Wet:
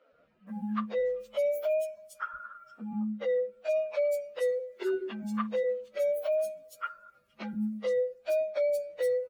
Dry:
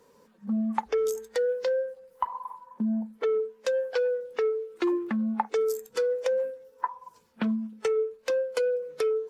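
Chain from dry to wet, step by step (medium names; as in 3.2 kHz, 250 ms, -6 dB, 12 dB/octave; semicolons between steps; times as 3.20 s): frequency axis rescaled in octaves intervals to 124%; three bands offset in time mids, lows, highs 120/470 ms, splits 260/4600 Hz; trim -1 dB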